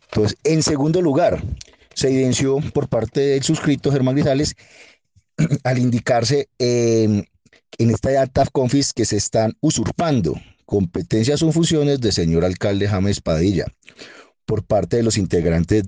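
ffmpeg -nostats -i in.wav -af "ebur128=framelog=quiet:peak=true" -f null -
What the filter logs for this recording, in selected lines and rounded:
Integrated loudness:
  I:         -18.7 LUFS
  Threshold: -29.2 LUFS
Loudness range:
  LRA:         1.4 LU
  Threshold: -39.2 LUFS
  LRA low:   -20.1 LUFS
  LRA high:  -18.6 LUFS
True peak:
  Peak:       -7.0 dBFS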